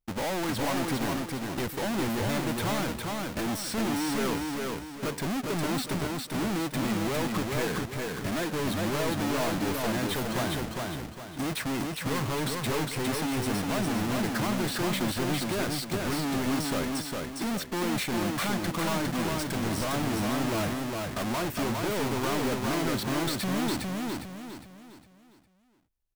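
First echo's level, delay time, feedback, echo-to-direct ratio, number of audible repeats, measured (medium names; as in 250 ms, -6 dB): -3.0 dB, 407 ms, 38%, -2.5 dB, 4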